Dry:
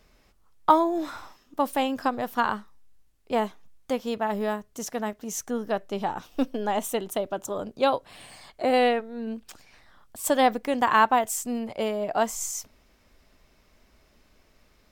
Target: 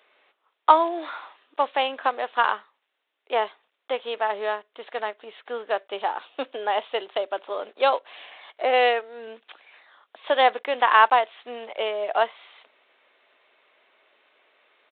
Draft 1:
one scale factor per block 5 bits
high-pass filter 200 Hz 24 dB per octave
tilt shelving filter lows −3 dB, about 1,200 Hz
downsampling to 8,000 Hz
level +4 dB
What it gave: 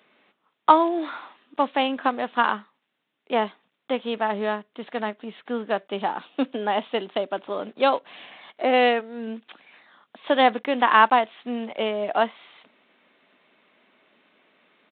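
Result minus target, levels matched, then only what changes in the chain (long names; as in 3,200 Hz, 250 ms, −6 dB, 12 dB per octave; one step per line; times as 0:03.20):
250 Hz band +12.0 dB
change: high-pass filter 410 Hz 24 dB per octave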